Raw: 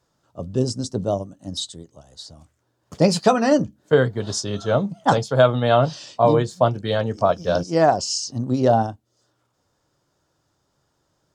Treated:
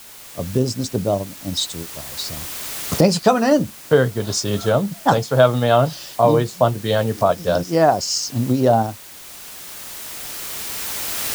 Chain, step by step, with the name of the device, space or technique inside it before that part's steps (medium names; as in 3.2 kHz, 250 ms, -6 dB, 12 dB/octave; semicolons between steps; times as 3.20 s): cheap recorder with automatic gain (white noise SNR 21 dB; recorder AGC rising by 7 dB/s); trim +1.5 dB